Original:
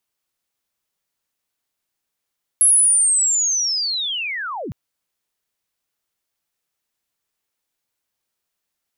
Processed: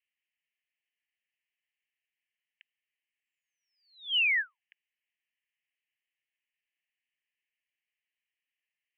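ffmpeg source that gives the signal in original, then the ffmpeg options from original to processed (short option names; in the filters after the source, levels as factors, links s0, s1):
-f lavfi -i "aevalsrc='pow(10,(-9.5-16.5*t/2.11)/20)*sin(2*PI*(11000*t-10924*t*t/(2*2.11)))':d=2.11:s=44100"
-af "asuperpass=centerf=2300:order=12:qfactor=1.7"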